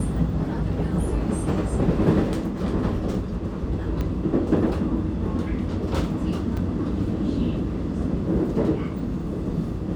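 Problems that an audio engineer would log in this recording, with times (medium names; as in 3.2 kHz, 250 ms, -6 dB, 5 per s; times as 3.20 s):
4.01 s: pop -16 dBFS
6.57 s: dropout 4.4 ms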